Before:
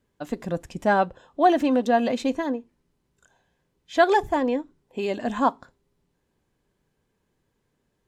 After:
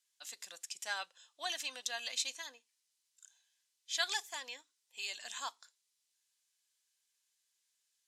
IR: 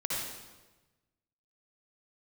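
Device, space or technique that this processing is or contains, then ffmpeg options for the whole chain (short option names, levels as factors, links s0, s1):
piezo pickup straight into a mixer: -af "lowpass=5600,aderivative,aderivative,volume=4.73"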